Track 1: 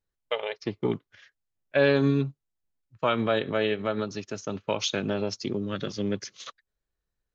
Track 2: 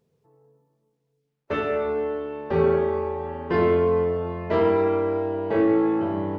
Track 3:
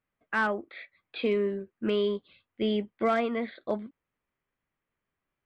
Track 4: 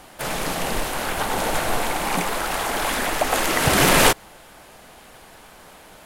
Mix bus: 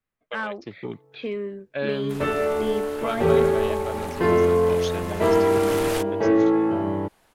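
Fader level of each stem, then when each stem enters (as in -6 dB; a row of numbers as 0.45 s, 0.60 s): -6.5 dB, +1.5 dB, -3.0 dB, -15.5 dB; 0.00 s, 0.70 s, 0.00 s, 1.90 s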